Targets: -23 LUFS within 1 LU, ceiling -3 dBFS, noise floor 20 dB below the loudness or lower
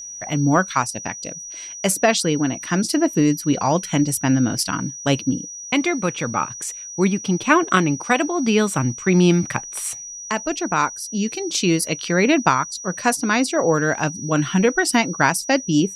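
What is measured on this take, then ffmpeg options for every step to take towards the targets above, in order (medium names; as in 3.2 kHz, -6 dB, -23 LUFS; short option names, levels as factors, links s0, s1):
steady tone 5.8 kHz; tone level -32 dBFS; loudness -20.0 LUFS; peak level -1.0 dBFS; loudness target -23.0 LUFS
-> -af "bandreject=f=5800:w=30"
-af "volume=0.708"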